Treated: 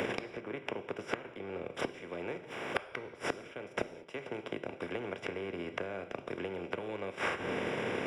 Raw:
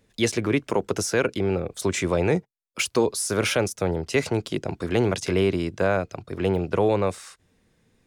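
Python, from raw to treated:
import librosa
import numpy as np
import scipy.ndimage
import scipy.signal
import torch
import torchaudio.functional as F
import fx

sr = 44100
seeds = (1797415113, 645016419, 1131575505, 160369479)

y = fx.bin_compress(x, sr, power=0.4)
y = fx.highpass(y, sr, hz=290.0, slope=6)
y = fx.transient(y, sr, attack_db=7, sustain_db=-7)
y = scipy.signal.savgol_filter(y, 25, 4, mode='constant')
y = fx.gate_flip(y, sr, shuts_db=-15.0, range_db=-32)
y = fx.rev_gated(y, sr, seeds[0], gate_ms=230, shape='falling', drr_db=9.0)
y = fx.band_squash(y, sr, depth_pct=100)
y = y * librosa.db_to_amplitude(1.0)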